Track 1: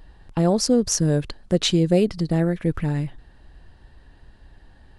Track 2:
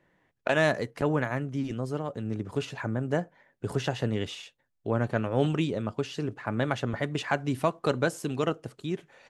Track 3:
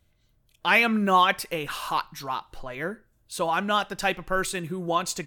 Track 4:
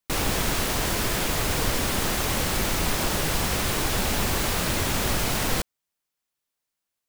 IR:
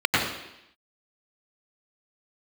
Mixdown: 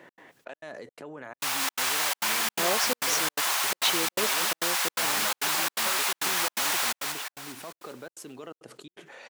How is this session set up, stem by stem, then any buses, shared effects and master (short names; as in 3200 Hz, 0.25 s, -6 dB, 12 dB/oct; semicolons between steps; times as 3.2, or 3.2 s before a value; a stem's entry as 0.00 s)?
-0.5 dB, 2.20 s, no send, no echo send, band-pass 1900 Hz, Q 0.61
-11.0 dB, 0.00 s, no send, no echo send, limiter -21 dBFS, peak gain reduction 10.5 dB; fast leveller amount 70%
-4.5 dB, 1.55 s, no send, no echo send, compressor, threshold -30 dBFS, peak gain reduction 14.5 dB
-0.5 dB, 1.30 s, no send, echo send -4 dB, HPF 790 Hz 24 dB/oct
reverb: off
echo: feedback echo 0.201 s, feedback 55%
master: HPF 270 Hz 12 dB/oct; step gate "x.xxxx.xx" 169 bpm -60 dB